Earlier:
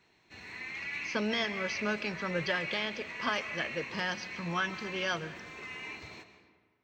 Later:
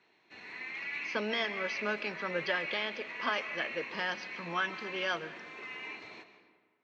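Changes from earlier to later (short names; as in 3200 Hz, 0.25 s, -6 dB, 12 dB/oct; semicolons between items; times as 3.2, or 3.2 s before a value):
background: add low shelf 120 Hz +6.5 dB; master: add BPF 280–4200 Hz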